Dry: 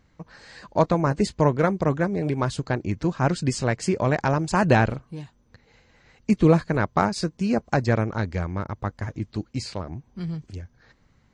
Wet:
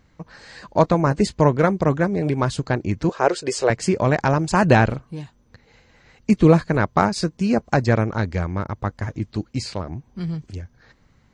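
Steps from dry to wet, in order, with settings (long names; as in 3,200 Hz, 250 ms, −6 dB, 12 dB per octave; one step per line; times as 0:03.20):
0:03.09–0:03.70: low shelf with overshoot 290 Hz −13.5 dB, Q 3
level +3.5 dB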